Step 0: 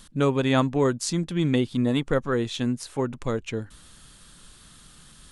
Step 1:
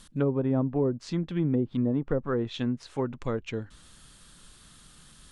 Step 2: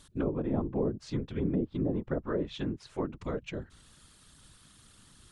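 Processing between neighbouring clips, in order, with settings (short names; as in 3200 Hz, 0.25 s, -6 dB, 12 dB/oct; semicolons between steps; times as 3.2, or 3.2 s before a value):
treble ducked by the level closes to 530 Hz, closed at -17.5 dBFS; gain -3 dB
whisperiser; gain -4.5 dB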